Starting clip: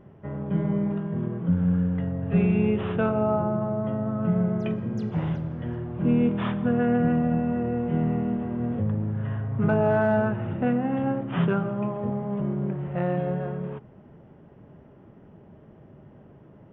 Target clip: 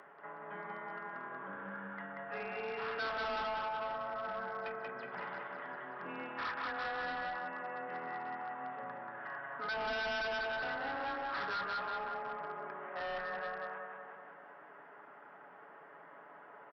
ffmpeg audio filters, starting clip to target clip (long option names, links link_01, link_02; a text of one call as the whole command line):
ffmpeg -i in.wav -filter_complex "[0:a]highpass=1300,highshelf=frequency=2200:width_type=q:width=1.5:gain=-11,aecho=1:1:7.3:0.45,asplit=2[link_01][link_02];[link_02]acompressor=mode=upward:threshold=-41dB:ratio=2.5,volume=-1dB[link_03];[link_01][link_03]amix=inputs=2:normalize=0,aecho=1:1:185|370|555|740|925|1110|1295|1480|1665:0.708|0.425|0.255|0.153|0.0917|0.055|0.033|0.0198|0.0119,aresample=11025,asoftclip=type=hard:threshold=-30.5dB,aresample=44100,afreqshift=19,volume=-4.5dB" out.wav